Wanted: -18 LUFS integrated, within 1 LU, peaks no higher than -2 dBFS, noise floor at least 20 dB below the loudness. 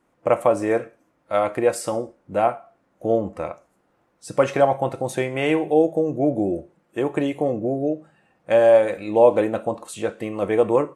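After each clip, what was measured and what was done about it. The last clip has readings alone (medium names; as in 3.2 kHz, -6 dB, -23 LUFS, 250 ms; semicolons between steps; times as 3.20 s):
loudness -21.5 LUFS; peak level -3.5 dBFS; loudness target -18.0 LUFS
-> trim +3.5 dB; peak limiter -2 dBFS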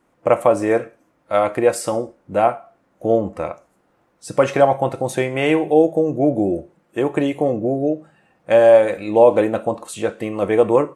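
loudness -18.0 LUFS; peak level -2.0 dBFS; noise floor -63 dBFS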